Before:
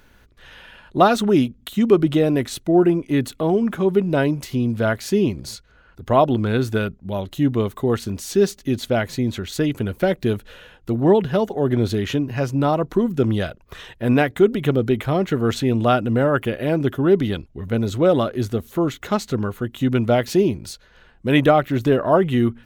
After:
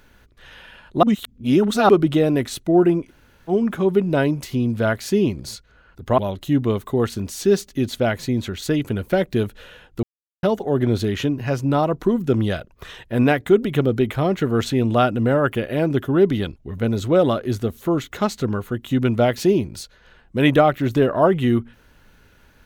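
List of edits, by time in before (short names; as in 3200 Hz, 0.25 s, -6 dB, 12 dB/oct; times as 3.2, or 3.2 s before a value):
1.03–1.89 reverse
3.08–3.5 room tone, crossfade 0.06 s
6.18–7.08 cut
10.93–11.33 mute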